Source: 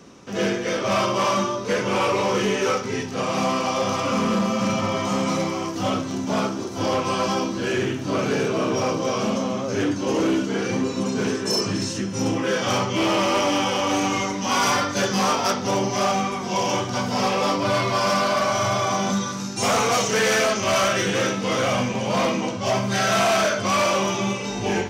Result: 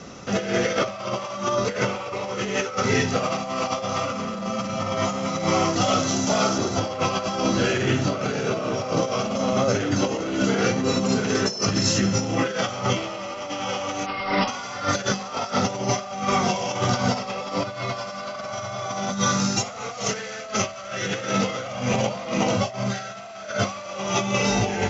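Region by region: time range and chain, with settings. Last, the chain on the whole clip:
5.81–6.58 tone controls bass -3 dB, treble +8 dB + compressor 2:1, threshold -26 dBFS
14.06–14.48 high shelf 7900 Hz -11.5 dB + overdrive pedal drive 16 dB, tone 2900 Hz, clips at -15.5 dBFS + careless resampling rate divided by 4×, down none, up filtered
whole clip: Chebyshev low-pass 7400 Hz, order 8; comb 1.5 ms, depth 40%; negative-ratio compressor -27 dBFS, ratio -0.5; gain +3 dB

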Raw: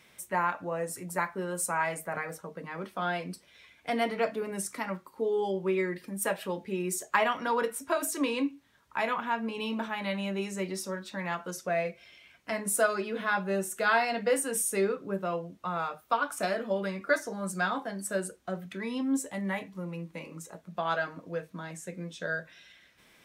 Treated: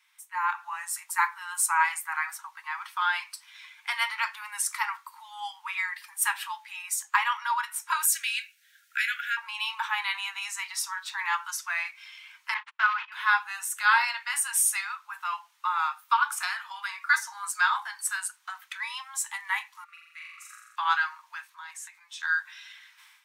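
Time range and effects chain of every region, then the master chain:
8.05–9.37 Chebyshev high-pass 1400 Hz, order 8 + high shelf 9700 Hz +9 dB
12.54–13.12 block floating point 3-bit + LPF 2900 Hz 24 dB/oct + gate -36 dBFS, range -43 dB
19.84–20.76 brick-wall FIR high-pass 1100 Hz + high shelf 2000 Hz -11.5 dB + flutter echo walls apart 7.4 m, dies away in 1 s
21.5–22.23 notch 1400 Hz, Q 26 + compressor 3:1, threshold -44 dBFS
whole clip: steep high-pass 860 Hz 96 dB/oct; AGC gain up to 15.5 dB; gain -7.5 dB

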